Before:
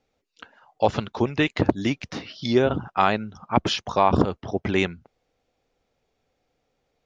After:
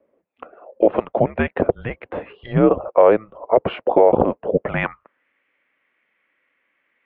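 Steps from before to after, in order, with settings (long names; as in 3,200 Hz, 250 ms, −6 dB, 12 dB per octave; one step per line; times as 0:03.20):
single-sideband voice off tune −220 Hz 170–3,100 Hz
band-pass filter sweep 530 Hz → 2,000 Hz, 0:04.63–0:05.26
boost into a limiter +19.5 dB
level −1.5 dB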